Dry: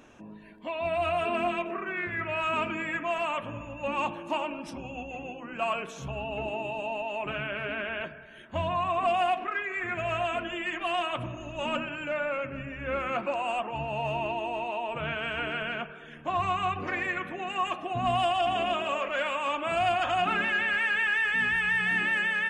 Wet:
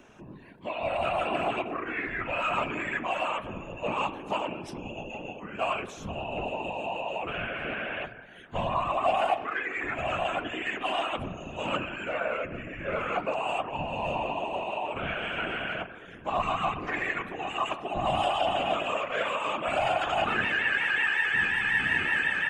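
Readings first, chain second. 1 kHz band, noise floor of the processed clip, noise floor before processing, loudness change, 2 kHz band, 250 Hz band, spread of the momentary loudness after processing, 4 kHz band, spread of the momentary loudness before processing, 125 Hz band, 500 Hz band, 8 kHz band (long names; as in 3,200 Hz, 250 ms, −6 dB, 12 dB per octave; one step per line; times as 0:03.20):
0.0 dB, −46 dBFS, −46 dBFS, 0.0 dB, 0.0 dB, −0.5 dB, 12 LU, +0.5 dB, 12 LU, −1.0 dB, 0.0 dB, 0.0 dB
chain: random phases in short frames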